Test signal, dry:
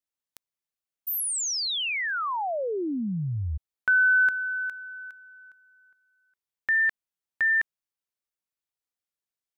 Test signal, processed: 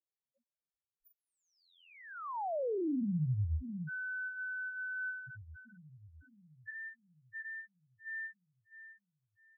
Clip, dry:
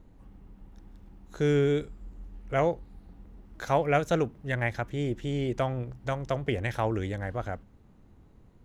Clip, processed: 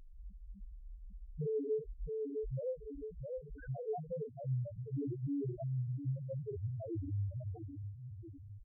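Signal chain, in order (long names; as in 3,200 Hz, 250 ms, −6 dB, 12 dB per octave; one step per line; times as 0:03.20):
on a send: feedback echo with a low-pass in the loop 659 ms, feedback 53%, low-pass 830 Hz, level −13 dB
on the sum: downward compressor 8 to 1, threshold −33 dBFS
treble cut that deepens with the level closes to 930 Hz, closed at −34 dBFS
in parallel at −10 dB: sample-and-hold swept by an LFO 18×, swing 100% 0.38 Hz
on the sum: double-tracking delay 39 ms −5 dB
spectral peaks only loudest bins 1
level +3.5 dB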